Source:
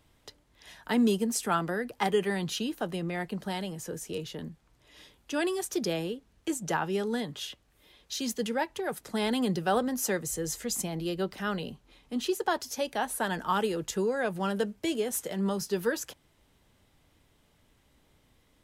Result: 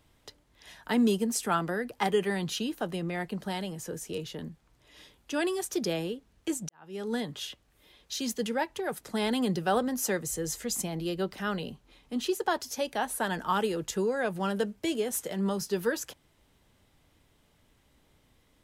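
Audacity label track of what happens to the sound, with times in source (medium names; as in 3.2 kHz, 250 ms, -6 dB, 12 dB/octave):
6.690000	7.130000	fade in quadratic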